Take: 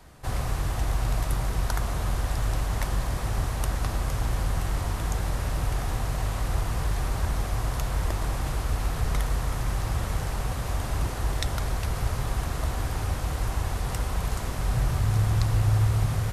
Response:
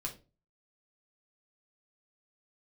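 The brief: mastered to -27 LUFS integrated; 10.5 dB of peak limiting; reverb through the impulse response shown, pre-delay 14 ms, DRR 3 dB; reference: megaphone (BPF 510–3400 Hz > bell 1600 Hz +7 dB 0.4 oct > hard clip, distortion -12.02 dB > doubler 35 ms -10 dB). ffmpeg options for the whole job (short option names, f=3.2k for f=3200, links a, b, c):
-filter_complex "[0:a]alimiter=limit=-21dB:level=0:latency=1,asplit=2[a][b];[1:a]atrim=start_sample=2205,adelay=14[c];[b][c]afir=irnorm=-1:irlink=0,volume=-3dB[d];[a][d]amix=inputs=2:normalize=0,highpass=510,lowpass=3.4k,equalizer=f=1.6k:t=o:w=0.4:g=7,asoftclip=type=hard:threshold=-35dB,asplit=2[e][f];[f]adelay=35,volume=-10dB[g];[e][g]amix=inputs=2:normalize=0,volume=11dB"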